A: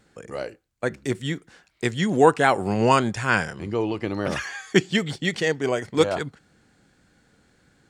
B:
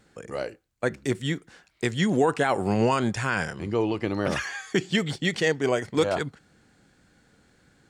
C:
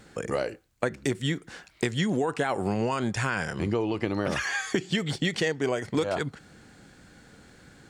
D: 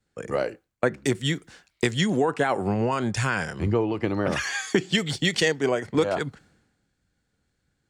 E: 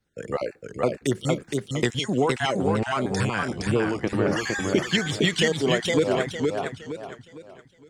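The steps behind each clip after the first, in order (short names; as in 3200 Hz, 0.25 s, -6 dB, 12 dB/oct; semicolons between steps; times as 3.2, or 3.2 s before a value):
limiter -11.5 dBFS, peak gain reduction 9 dB
compressor 6:1, threshold -32 dBFS, peak gain reduction 14.5 dB; gain +8 dB
three-band expander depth 100%; gain +3 dB
random spectral dropouts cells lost 24%; warbling echo 0.462 s, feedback 35%, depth 130 cents, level -3 dB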